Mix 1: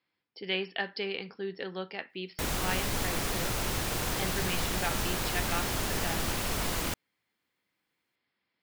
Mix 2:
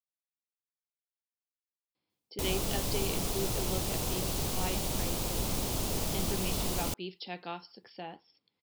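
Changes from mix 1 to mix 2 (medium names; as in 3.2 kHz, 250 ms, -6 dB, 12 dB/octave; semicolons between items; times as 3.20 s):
speech: entry +1.95 s; master: add peaking EQ 1.7 kHz -13.5 dB 1.1 oct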